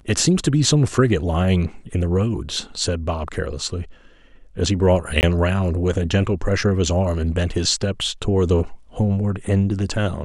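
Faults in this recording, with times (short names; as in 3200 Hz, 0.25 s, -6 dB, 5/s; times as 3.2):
5.21–5.23 gap 19 ms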